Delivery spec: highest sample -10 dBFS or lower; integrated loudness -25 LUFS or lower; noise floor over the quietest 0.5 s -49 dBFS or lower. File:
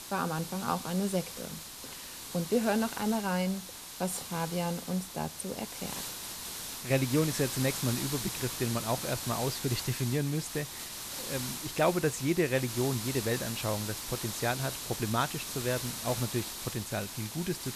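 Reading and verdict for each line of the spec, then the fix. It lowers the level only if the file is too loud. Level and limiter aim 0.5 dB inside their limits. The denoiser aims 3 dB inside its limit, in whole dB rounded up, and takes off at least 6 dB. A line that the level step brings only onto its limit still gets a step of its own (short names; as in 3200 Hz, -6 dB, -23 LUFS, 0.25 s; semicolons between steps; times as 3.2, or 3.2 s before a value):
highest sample -14.5 dBFS: OK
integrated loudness -32.5 LUFS: OK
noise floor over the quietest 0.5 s -44 dBFS: fail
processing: denoiser 8 dB, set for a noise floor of -44 dBFS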